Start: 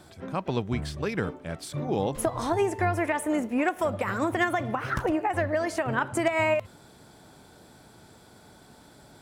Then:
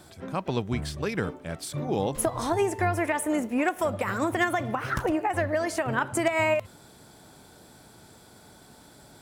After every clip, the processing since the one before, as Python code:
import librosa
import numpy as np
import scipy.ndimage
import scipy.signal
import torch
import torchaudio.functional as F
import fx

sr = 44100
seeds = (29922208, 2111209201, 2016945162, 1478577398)

y = fx.high_shelf(x, sr, hz=6000.0, db=6.0)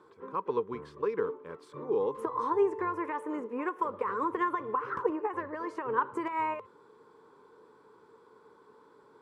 y = fx.double_bandpass(x, sr, hz=680.0, octaves=1.2)
y = y * librosa.db_to_amplitude(5.5)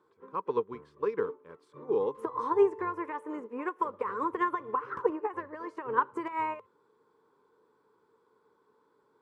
y = fx.upward_expand(x, sr, threshold_db=-49.0, expansion=1.5)
y = y * librosa.db_to_amplitude(3.5)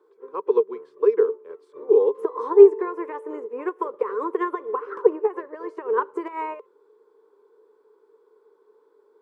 y = fx.highpass_res(x, sr, hz=410.0, q=4.9)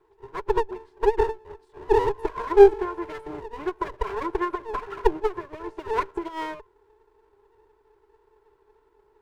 y = fx.lower_of_two(x, sr, delay_ms=2.9)
y = y * librosa.db_to_amplitude(-1.0)